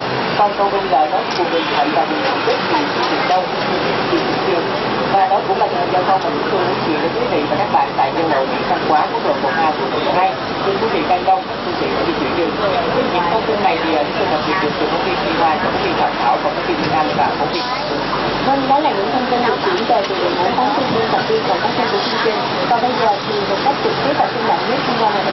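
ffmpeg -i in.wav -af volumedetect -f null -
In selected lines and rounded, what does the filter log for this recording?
mean_volume: -16.2 dB
max_volume: -2.9 dB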